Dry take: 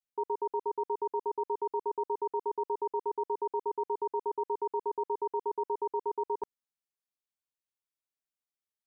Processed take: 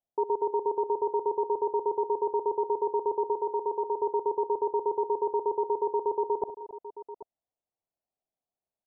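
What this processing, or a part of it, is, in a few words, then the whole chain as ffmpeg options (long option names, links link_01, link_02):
under water: -filter_complex "[0:a]asplit=3[link_01][link_02][link_03];[link_01]afade=type=out:start_time=3.32:duration=0.02[link_04];[link_02]lowshelf=frequency=340:gain=-6,afade=type=in:start_time=3.32:duration=0.02,afade=type=out:start_time=3.99:duration=0.02[link_05];[link_03]afade=type=in:start_time=3.99:duration=0.02[link_06];[link_04][link_05][link_06]amix=inputs=3:normalize=0,lowpass=frequency=870:width=0.5412,lowpass=frequency=870:width=1.3066,equalizer=frequency=690:width_type=o:width=0.5:gain=9.5,aecho=1:1:54|62|272|788:0.106|0.2|0.141|0.188,volume=5.5dB"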